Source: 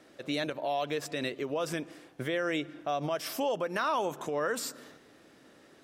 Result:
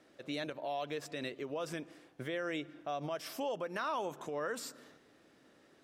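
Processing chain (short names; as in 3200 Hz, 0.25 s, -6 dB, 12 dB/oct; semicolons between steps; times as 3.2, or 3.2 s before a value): high shelf 9700 Hz -4.5 dB; gain -6.5 dB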